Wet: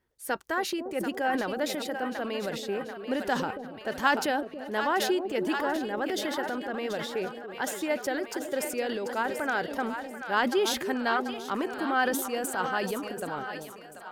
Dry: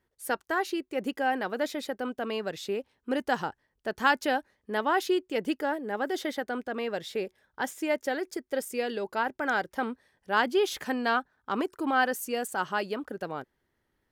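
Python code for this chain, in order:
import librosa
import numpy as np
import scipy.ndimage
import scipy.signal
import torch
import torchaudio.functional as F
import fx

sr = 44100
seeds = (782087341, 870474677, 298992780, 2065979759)

y = fx.echo_split(x, sr, split_hz=600.0, low_ms=281, high_ms=737, feedback_pct=52, wet_db=-9.5)
y = fx.transient(y, sr, attack_db=1, sustain_db=8)
y = y * librosa.db_to_amplitude(-1.5)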